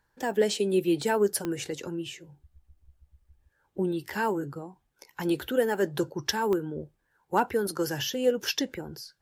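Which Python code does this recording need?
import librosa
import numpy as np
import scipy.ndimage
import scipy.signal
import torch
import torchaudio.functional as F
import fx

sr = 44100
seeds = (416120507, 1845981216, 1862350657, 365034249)

y = fx.fix_declip(x, sr, threshold_db=-12.0)
y = fx.fix_declick_ar(y, sr, threshold=10.0)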